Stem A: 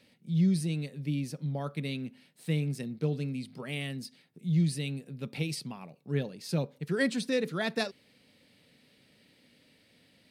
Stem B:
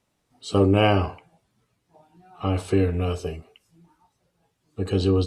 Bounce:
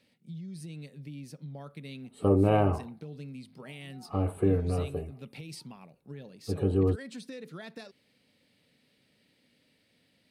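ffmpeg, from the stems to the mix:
ffmpeg -i stem1.wav -i stem2.wav -filter_complex "[0:a]alimiter=level_in=1.5dB:limit=-24dB:level=0:latency=1:release=143,volume=-1.5dB,acompressor=threshold=-33dB:ratio=6,volume=-5.5dB[link_01];[1:a]firequalizer=gain_entry='entry(670,0);entry(5500,-29);entry(9300,-1)':delay=0.05:min_phase=1,adelay=1700,volume=-4.5dB[link_02];[link_01][link_02]amix=inputs=2:normalize=0" out.wav

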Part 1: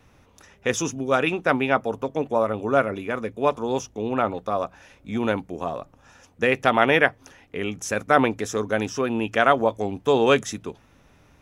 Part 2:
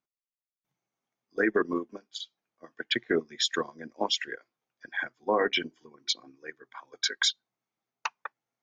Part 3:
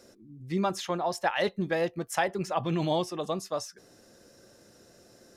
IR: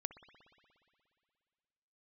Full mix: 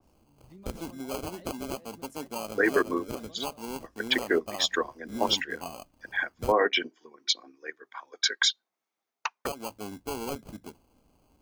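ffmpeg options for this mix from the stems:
-filter_complex "[0:a]equalizer=frequency=125:width_type=o:width=1:gain=-8,equalizer=frequency=250:width_type=o:width=1:gain=4,equalizer=frequency=500:width_type=o:width=1:gain=-5,equalizer=frequency=1000:width_type=o:width=1:gain=8,equalizer=frequency=2000:width_type=o:width=1:gain=3,equalizer=frequency=4000:width_type=o:width=1:gain=7,equalizer=frequency=8000:width_type=o:width=1:gain=-11,acrusher=samples=24:mix=1:aa=0.000001,volume=-8.5dB,asplit=3[link_01][link_02][link_03];[link_01]atrim=end=6.52,asetpts=PTS-STARTPTS,afade=type=out:start_time=6.516:duration=0.004:curve=hsin[link_04];[link_02]atrim=start=6.52:end=9.45,asetpts=PTS-STARTPTS,volume=0[link_05];[link_03]atrim=start=9.45,asetpts=PTS-STARTPTS,afade=type=in:duration=0.004:curve=hsin[link_06];[link_04][link_05][link_06]concat=n=3:v=0:a=1[link_07];[1:a]dynaudnorm=framelen=190:gausssize=9:maxgain=5dB,highpass=310,adelay=1200,volume=-2dB[link_08];[2:a]acompressor=threshold=-29dB:ratio=6,volume=-16.5dB[link_09];[link_07][link_09]amix=inputs=2:normalize=0,equalizer=frequency=1600:width=0.39:gain=-7.5,acompressor=threshold=-30dB:ratio=12,volume=0dB[link_10];[link_08][link_10]amix=inputs=2:normalize=0,adynamicequalizer=threshold=0.01:dfrequency=2500:dqfactor=0.7:tfrequency=2500:tqfactor=0.7:attack=5:release=100:ratio=0.375:range=2:mode=cutabove:tftype=highshelf"

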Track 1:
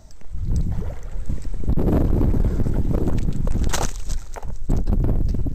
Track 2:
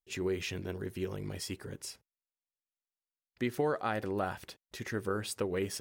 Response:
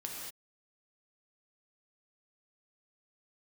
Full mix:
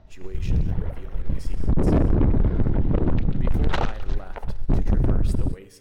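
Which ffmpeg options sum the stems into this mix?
-filter_complex "[0:a]lowpass=frequency=3500:width=0.5412,lowpass=frequency=3500:width=1.3066,volume=-1dB,asplit=2[link_01][link_02];[link_02]volume=-18.5dB[link_03];[1:a]volume=-10dB,asplit=2[link_04][link_05];[link_05]volume=-5.5dB[link_06];[2:a]atrim=start_sample=2205[link_07];[link_03][link_06]amix=inputs=2:normalize=0[link_08];[link_08][link_07]afir=irnorm=-1:irlink=0[link_09];[link_01][link_04][link_09]amix=inputs=3:normalize=0,aeval=exprs='0.266*(cos(1*acos(clip(val(0)/0.266,-1,1)))-cos(1*PI/2))+0.0133*(cos(7*acos(clip(val(0)/0.266,-1,1)))-cos(7*PI/2))':channel_layout=same"

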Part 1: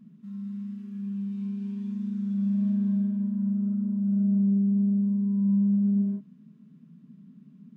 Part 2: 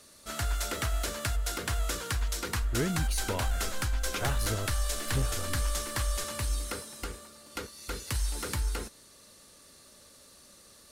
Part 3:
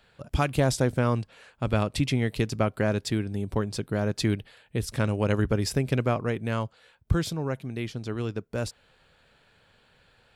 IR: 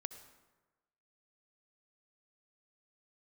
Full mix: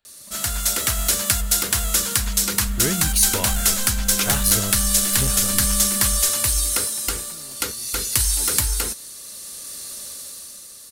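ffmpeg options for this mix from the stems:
-filter_complex "[0:a]acrusher=bits=5:mix=0:aa=0.000001,volume=-12.5dB[link_01];[1:a]crystalizer=i=4:c=0,adelay=50,volume=1dB[link_02];[2:a]highshelf=frequency=5200:gain=11.5,aeval=exprs='(tanh(56.2*val(0)+0.45)-tanh(0.45))/56.2':channel_layout=same,volume=-17dB[link_03];[link_01][link_02][link_03]amix=inputs=3:normalize=0,dynaudnorm=framelen=130:gausssize=13:maxgain=9.5dB"

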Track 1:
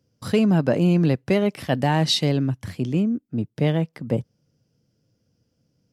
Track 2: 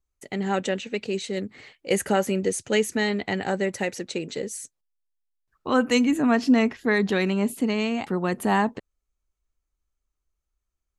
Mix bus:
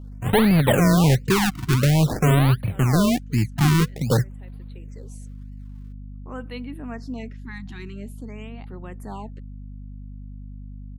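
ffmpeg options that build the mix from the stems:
ffmpeg -i stem1.wav -i stem2.wav -filter_complex "[0:a]equalizer=frequency=125:width_type=o:width=1:gain=12,equalizer=frequency=500:width_type=o:width=1:gain=11,equalizer=frequency=2000:width_type=o:width=1:gain=-9,equalizer=frequency=4000:width_type=o:width=1:gain=-5,acrusher=samples=36:mix=1:aa=0.000001:lfo=1:lforange=36:lforate=1.4,volume=0dB,asplit=2[link_01][link_02];[1:a]adelay=600,volume=-14.5dB[link_03];[link_02]apad=whole_len=510970[link_04];[link_03][link_04]sidechaincompress=threshold=-27dB:ratio=4:attack=16:release=728[link_05];[link_01][link_05]amix=inputs=2:normalize=0,asoftclip=type=tanh:threshold=-13dB,aeval=exprs='val(0)+0.0158*(sin(2*PI*50*n/s)+sin(2*PI*2*50*n/s)/2+sin(2*PI*3*50*n/s)/3+sin(2*PI*4*50*n/s)/4+sin(2*PI*5*50*n/s)/5)':channel_layout=same,afftfilt=real='re*(1-between(b*sr/1024,480*pow(6800/480,0.5+0.5*sin(2*PI*0.49*pts/sr))/1.41,480*pow(6800/480,0.5+0.5*sin(2*PI*0.49*pts/sr))*1.41))':imag='im*(1-between(b*sr/1024,480*pow(6800/480,0.5+0.5*sin(2*PI*0.49*pts/sr))/1.41,480*pow(6800/480,0.5+0.5*sin(2*PI*0.49*pts/sr))*1.41))':win_size=1024:overlap=0.75" out.wav

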